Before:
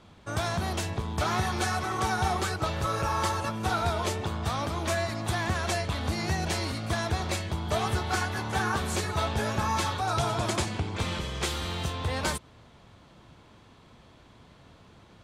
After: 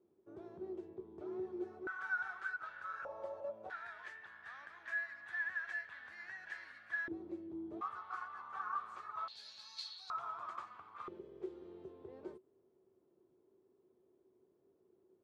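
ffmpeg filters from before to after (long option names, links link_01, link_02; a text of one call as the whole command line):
ffmpeg -i in.wav -af "asetnsamples=nb_out_samples=441:pad=0,asendcmd='1.87 bandpass f 1500;3.05 bandpass f 580;3.7 bandpass f 1700;7.08 bandpass f 330;7.81 bandpass f 1200;9.28 bandpass f 4300;10.1 bandpass f 1200;11.08 bandpass f 380',bandpass=frequency=370:width_type=q:width=15:csg=0" out.wav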